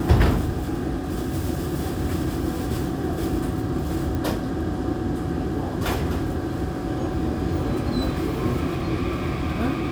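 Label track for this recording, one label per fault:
4.150000	4.150000	click

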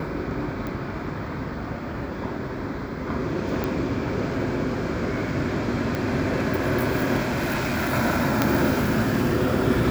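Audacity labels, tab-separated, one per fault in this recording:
0.670000	0.670000	click −19 dBFS
3.640000	3.640000	click −13 dBFS
5.950000	5.950000	click −13 dBFS
7.240000	7.940000	clipping −21 dBFS
8.420000	8.420000	click −4 dBFS

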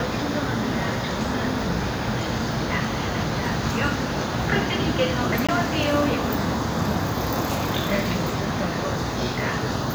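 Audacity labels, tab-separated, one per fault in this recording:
5.470000	5.490000	drop-out 16 ms

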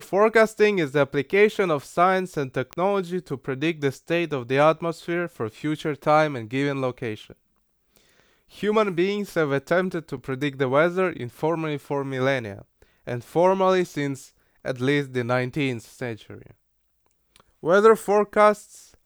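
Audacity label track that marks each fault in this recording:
2.730000	2.730000	click −15 dBFS
10.170000	10.170000	drop-out 4.6 ms

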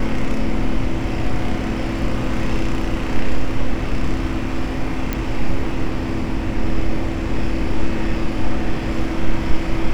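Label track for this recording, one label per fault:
5.130000	5.130000	click −8 dBFS

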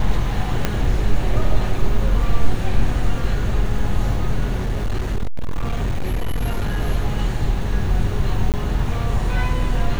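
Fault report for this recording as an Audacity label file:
0.650000	0.650000	click −4 dBFS
4.580000	6.800000	clipping −16.5 dBFS
8.520000	8.540000	drop-out 18 ms

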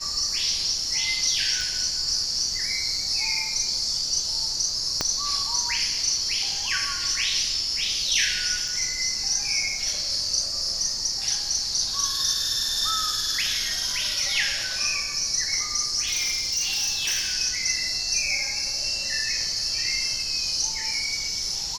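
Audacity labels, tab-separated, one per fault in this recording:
1.610000	1.610000	drop-out 3 ms
5.010000	5.010000	click −8 dBFS
8.680000	8.680000	drop-out 4.2 ms
16.070000	17.340000	clipping −21 dBFS

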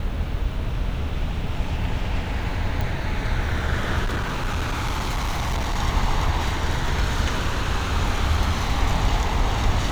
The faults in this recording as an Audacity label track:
2.810000	2.810000	click
4.040000	5.800000	clipping −20.5 dBFS

